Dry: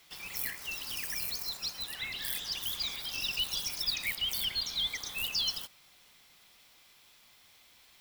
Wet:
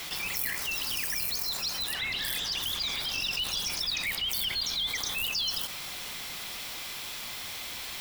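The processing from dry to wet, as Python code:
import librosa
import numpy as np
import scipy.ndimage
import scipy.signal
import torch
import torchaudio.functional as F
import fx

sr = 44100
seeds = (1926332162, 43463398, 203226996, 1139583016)

y = fx.high_shelf(x, sr, hz=9000.0, db=-7.5, at=(1.93, 4.3))
y = fx.env_flatten(y, sr, amount_pct=70)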